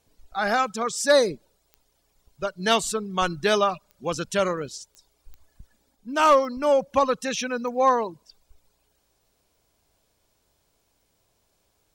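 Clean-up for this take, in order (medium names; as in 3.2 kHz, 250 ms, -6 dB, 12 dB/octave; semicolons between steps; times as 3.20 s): clip repair -9.5 dBFS; de-click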